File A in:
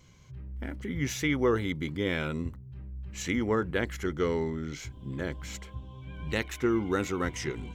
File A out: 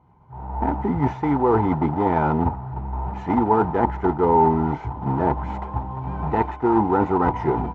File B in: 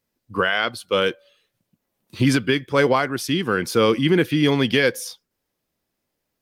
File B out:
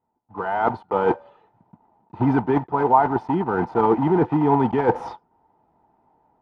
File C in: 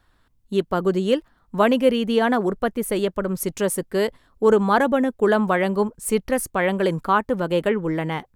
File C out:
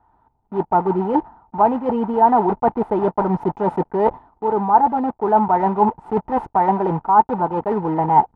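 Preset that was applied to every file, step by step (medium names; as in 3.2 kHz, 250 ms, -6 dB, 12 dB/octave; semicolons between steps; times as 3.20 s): block-companded coder 3-bit; reverse; compression 10:1, threshold -30 dBFS; reverse; resonant low-pass 890 Hz, resonance Q 8.1; level rider gain up to 14 dB; comb of notches 550 Hz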